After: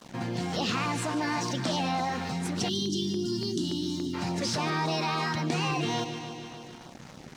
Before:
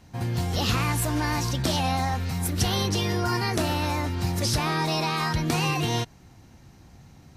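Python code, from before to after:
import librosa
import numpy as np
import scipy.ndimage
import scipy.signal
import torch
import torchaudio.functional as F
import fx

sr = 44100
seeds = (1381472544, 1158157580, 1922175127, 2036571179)

y = scipy.signal.sosfilt(scipy.signal.butter(4, 8200.0, 'lowpass', fs=sr, output='sos'), x)
y = fx.vibrato(y, sr, rate_hz=2.9, depth_cents=20.0)
y = scipy.signal.sosfilt(scipy.signal.butter(4, 160.0, 'highpass', fs=sr, output='sos'), y)
y = fx.high_shelf(y, sr, hz=3500.0, db=-5.5)
y = np.sign(y) * np.maximum(np.abs(y) - 10.0 ** (-54.5 / 20.0), 0.0)
y = fx.echo_feedback(y, sr, ms=147, feedback_pct=57, wet_db=-15)
y = fx.spec_box(y, sr, start_s=2.69, length_s=1.45, low_hz=420.0, high_hz=2800.0, gain_db=-26)
y = fx.filter_lfo_notch(y, sr, shape='saw_down', hz=3.5, low_hz=260.0, high_hz=2500.0, q=2.4)
y = fx.env_flatten(y, sr, amount_pct=50)
y = y * librosa.db_to_amplitude(-2.5)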